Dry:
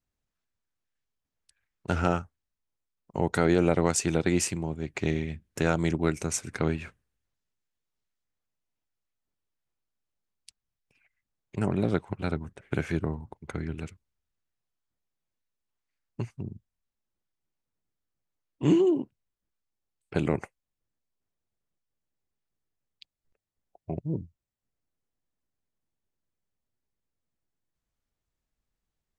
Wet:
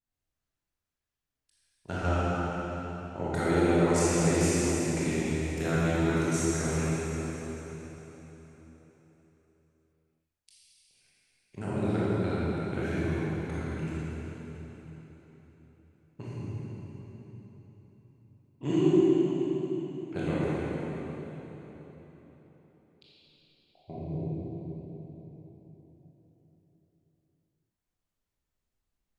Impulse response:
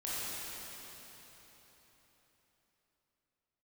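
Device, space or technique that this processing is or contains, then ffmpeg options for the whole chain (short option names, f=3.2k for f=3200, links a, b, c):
cathedral: -filter_complex "[1:a]atrim=start_sample=2205[a];[0:a][a]afir=irnorm=-1:irlink=0,volume=-4.5dB"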